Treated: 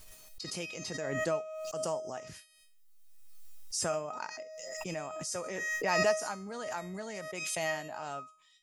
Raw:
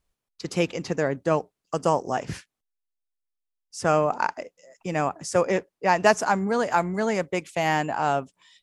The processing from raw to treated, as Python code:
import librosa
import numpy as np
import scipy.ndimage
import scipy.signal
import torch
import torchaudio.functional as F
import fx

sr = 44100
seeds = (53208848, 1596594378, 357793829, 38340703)

y = fx.high_shelf(x, sr, hz=3400.0, db=10.5)
y = fx.comb_fb(y, sr, f0_hz=630.0, decay_s=0.41, harmonics='all', damping=0.0, mix_pct=90)
y = fx.pre_swell(y, sr, db_per_s=25.0)